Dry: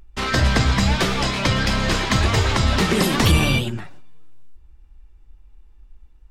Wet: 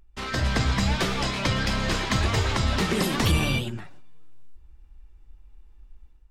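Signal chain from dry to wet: AGC gain up to 7 dB; gain -9 dB

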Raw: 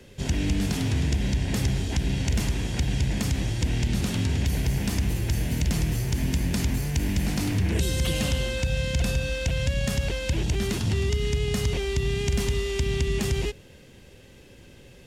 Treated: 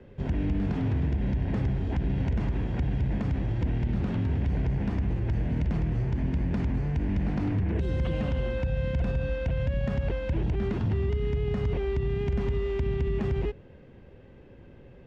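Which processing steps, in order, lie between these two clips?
LPF 1400 Hz 12 dB/oct; limiter -20 dBFS, peak gain reduction 5 dB

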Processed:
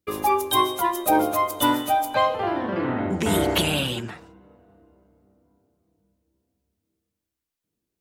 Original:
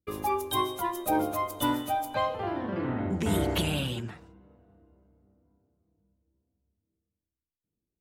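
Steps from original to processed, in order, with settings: low shelf 190 Hz -10 dB; gain +8.5 dB

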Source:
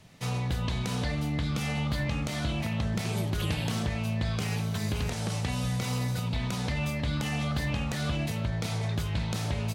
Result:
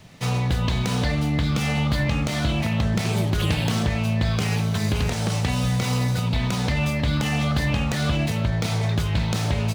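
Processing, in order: median filter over 3 samples; gain +7.5 dB

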